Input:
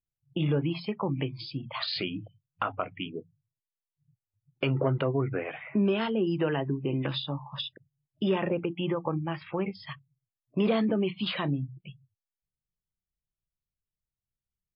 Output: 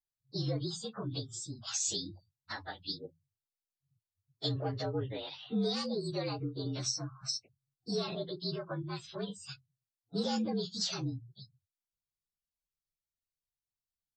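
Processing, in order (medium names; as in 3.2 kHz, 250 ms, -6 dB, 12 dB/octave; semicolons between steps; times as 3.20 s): frequency axis rescaled in octaves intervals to 115%; resonant high shelf 2.9 kHz +9 dB, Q 1.5; speed mistake 24 fps film run at 25 fps; trim -6 dB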